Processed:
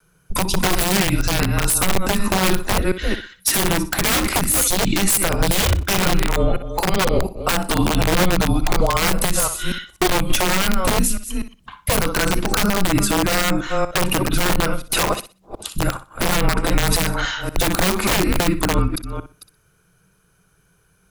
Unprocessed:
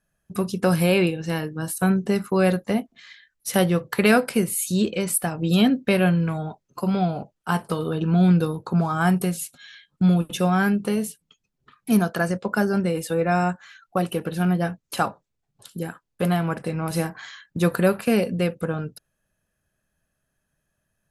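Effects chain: reverse delay 0.243 s, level -13 dB; wrapped overs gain 9.5 dB; compressor 3:1, threshold -24 dBFS, peak gain reduction 8.5 dB; bell 110 Hz -3.5 dB 0.54 oct; on a send: flutter echo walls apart 10.6 m, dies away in 0.29 s; on the sum: vibrato 0.31 Hz 8.5 cents; wrapped overs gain 20 dB; frequency shift -190 Hz; maximiser +21 dB; gain -5.5 dB

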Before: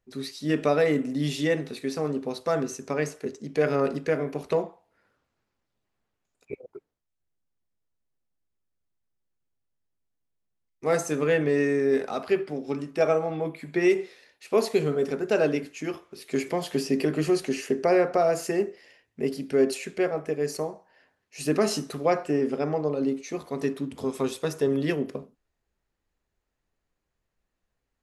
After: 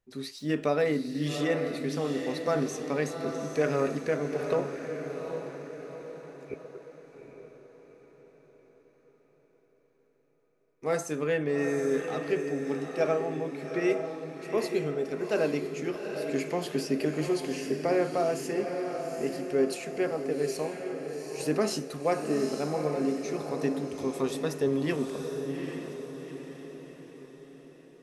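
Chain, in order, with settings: 0.38–1.27 median filter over 3 samples; vocal rider within 3 dB 2 s; diffused feedback echo 0.808 s, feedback 48%, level -6 dB; gain -4.5 dB

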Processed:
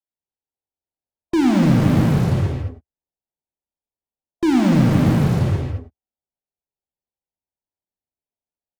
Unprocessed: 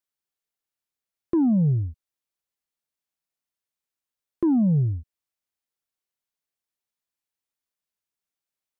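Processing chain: steep low-pass 1000 Hz 96 dB/oct; bell 71 Hz +3 dB 0.76 oct; on a send: bouncing-ball echo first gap 0.29 s, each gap 0.6×, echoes 5; on the sum: loudest bins only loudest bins 32; in parallel at -6 dB: fuzz box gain 49 dB, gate -48 dBFS; on the sum: non-linear reverb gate 0.25 s flat, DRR 0 dB; gain -3.5 dB

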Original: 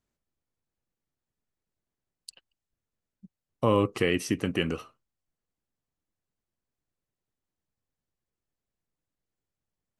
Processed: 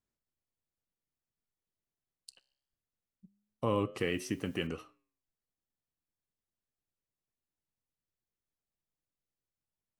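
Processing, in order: 4–4.67 requantised 10-bit, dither triangular; vibrato 12 Hz 20 cents; flange 0.21 Hz, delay 7.8 ms, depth 7.7 ms, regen -89%; gain -3 dB

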